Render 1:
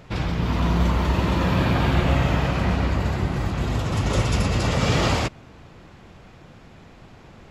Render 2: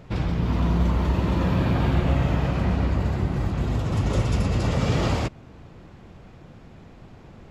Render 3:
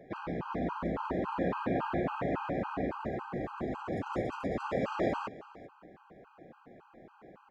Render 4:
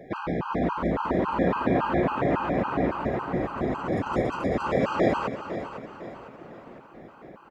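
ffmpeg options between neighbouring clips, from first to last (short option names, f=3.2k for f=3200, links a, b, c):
-filter_complex "[0:a]tiltshelf=f=750:g=3.5,asplit=2[a][b];[b]alimiter=limit=-15dB:level=0:latency=1:release=418,volume=-3dB[c];[a][c]amix=inputs=2:normalize=0,volume=-6.5dB"
-filter_complex "[0:a]acrossover=split=240 2100:gain=0.0708 1 0.112[a][b][c];[a][b][c]amix=inputs=3:normalize=0,aecho=1:1:389:0.112,afftfilt=real='re*gt(sin(2*PI*3.6*pts/sr)*(1-2*mod(floor(b*sr/1024/810),2)),0)':imag='im*gt(sin(2*PI*3.6*pts/sr)*(1-2*mod(floor(b*sr/1024/810),2)),0)':win_size=1024:overlap=0.75"
-af "aecho=1:1:504|1008|1512|2016|2520:0.282|0.127|0.0571|0.0257|0.0116,volume=8dB"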